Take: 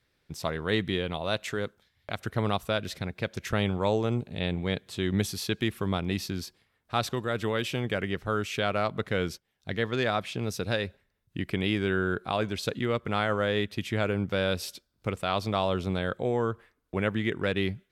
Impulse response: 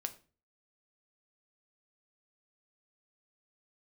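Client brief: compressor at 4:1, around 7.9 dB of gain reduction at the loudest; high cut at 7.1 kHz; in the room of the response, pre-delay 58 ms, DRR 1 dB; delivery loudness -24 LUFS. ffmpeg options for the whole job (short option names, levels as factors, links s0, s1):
-filter_complex "[0:a]lowpass=7100,acompressor=threshold=0.0251:ratio=4,asplit=2[s0][s1];[1:a]atrim=start_sample=2205,adelay=58[s2];[s1][s2]afir=irnorm=-1:irlink=0,volume=1[s3];[s0][s3]amix=inputs=2:normalize=0,volume=3.16"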